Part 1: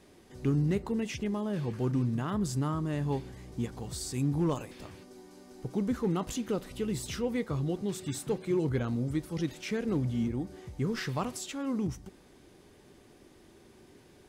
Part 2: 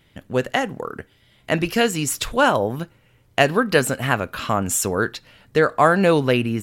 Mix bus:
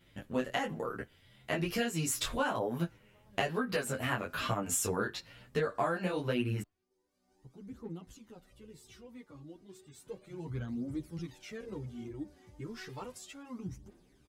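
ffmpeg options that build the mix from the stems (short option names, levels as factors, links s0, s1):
-filter_complex "[0:a]aphaser=in_gain=1:out_gain=1:delay=3.7:decay=0.54:speed=0.33:type=triangular,adelay=1800,volume=0.398,afade=t=in:st=9.9:d=0.58:silence=0.375837[s0];[1:a]acompressor=threshold=0.0794:ratio=12,flanger=delay=16.5:depth=7.4:speed=1.1,volume=1,asplit=2[s1][s2];[s2]apad=whole_len=709198[s3];[s0][s3]sidechaincompress=threshold=0.00282:ratio=5:attack=9.8:release=489[s4];[s4][s1]amix=inputs=2:normalize=0,asplit=2[s5][s6];[s6]adelay=9,afreqshift=2.5[s7];[s5][s7]amix=inputs=2:normalize=1"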